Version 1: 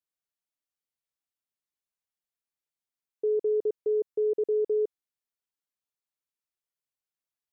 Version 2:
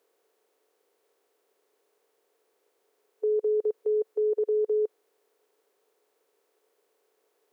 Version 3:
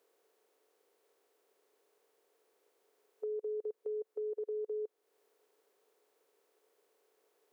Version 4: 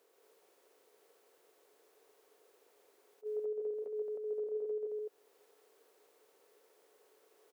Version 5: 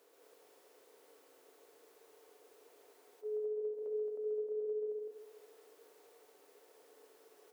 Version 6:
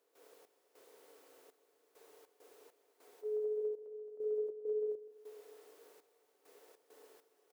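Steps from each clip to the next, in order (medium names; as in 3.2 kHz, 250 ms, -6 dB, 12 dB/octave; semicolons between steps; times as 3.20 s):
spectral levelling over time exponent 0.6; high-pass 570 Hz 12 dB/octave; in parallel at +2 dB: peak limiter -38.5 dBFS, peak gain reduction 11.5 dB; on the sum: trim +4 dB
compression 2:1, threshold -43 dBFS, peak gain reduction 10.5 dB; trim -2 dB
peak limiter -38.5 dBFS, peak gain reduction 8 dB; loudspeakers at several distances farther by 46 m -3 dB, 76 m -2 dB; attacks held to a fixed rise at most 470 dB/s; trim +3.5 dB
compression 6:1, threshold -44 dBFS, peak gain reduction 10 dB; FDN reverb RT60 1.9 s, low-frequency decay 1.55×, high-frequency decay 0.5×, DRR 4.5 dB; trim +3 dB
delay 477 ms -17.5 dB; trance gate ".xx..xxxxx...xx" 100 bpm -12 dB; trim +1.5 dB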